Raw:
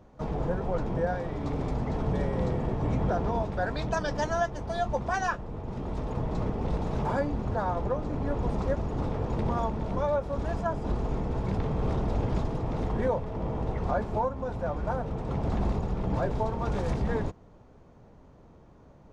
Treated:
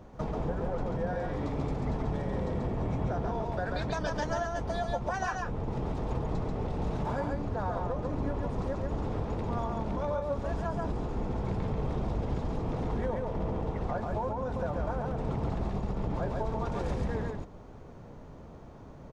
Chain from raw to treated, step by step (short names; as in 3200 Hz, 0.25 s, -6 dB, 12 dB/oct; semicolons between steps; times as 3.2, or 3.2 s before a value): compressor, threshold -35 dBFS, peak gain reduction 12.5 dB; on a send: echo 0.138 s -3 dB; on the sum: gain +4.5 dB